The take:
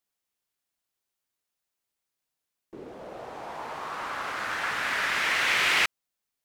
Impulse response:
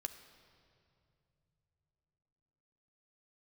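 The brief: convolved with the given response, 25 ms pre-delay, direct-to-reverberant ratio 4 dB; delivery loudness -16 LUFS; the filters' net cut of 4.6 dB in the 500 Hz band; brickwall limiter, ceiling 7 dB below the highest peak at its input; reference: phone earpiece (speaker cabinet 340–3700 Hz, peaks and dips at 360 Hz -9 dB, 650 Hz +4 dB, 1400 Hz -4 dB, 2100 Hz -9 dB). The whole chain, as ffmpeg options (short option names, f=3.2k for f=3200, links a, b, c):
-filter_complex "[0:a]equalizer=f=500:t=o:g=-7,alimiter=limit=-18.5dB:level=0:latency=1,asplit=2[a][b];[1:a]atrim=start_sample=2205,adelay=25[c];[b][c]afir=irnorm=-1:irlink=0,volume=-2dB[d];[a][d]amix=inputs=2:normalize=0,highpass=340,equalizer=f=360:t=q:w=4:g=-9,equalizer=f=650:t=q:w=4:g=4,equalizer=f=1.4k:t=q:w=4:g=-4,equalizer=f=2.1k:t=q:w=4:g=-9,lowpass=f=3.7k:w=0.5412,lowpass=f=3.7k:w=1.3066,volume=15.5dB"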